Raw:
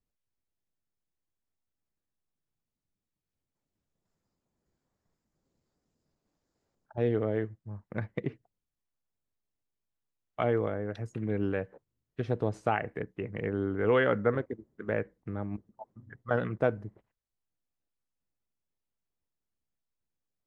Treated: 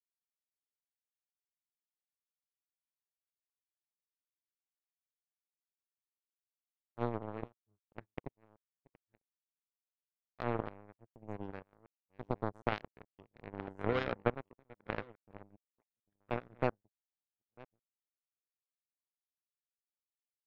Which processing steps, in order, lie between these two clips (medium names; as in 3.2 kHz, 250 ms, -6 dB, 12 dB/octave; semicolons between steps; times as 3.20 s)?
chunks repeated in reverse 659 ms, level -8 dB; peaking EQ 2.7 kHz -7.5 dB 2.8 oct; power-law waveshaper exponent 3; trim +3.5 dB